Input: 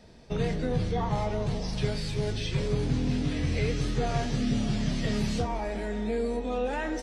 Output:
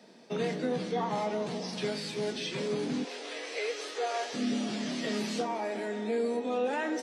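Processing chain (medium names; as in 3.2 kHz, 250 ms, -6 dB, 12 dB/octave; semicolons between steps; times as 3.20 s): steep high-pass 190 Hz 36 dB/octave, from 3.03 s 410 Hz, from 4.33 s 220 Hz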